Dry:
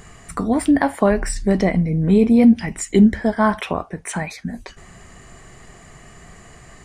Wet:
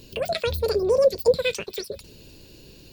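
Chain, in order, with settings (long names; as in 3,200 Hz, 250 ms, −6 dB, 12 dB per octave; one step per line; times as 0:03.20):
flat-topped bell 520 Hz −13.5 dB
delay with a high-pass on its return 582 ms, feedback 65%, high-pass 1,800 Hz, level −23 dB
wrong playback speed 33 rpm record played at 78 rpm
level −4 dB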